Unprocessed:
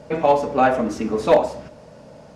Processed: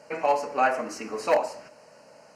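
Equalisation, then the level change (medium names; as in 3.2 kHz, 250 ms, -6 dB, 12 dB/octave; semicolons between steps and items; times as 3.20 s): high-pass 1.3 kHz 6 dB/octave; Butterworth band-stop 3.5 kHz, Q 3.1; 0.0 dB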